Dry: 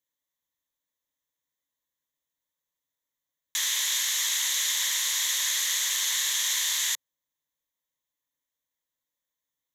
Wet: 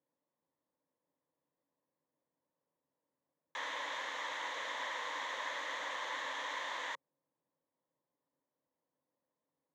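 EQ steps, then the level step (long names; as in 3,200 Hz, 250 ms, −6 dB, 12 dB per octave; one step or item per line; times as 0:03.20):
flat-topped band-pass 350 Hz, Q 0.53
+11.5 dB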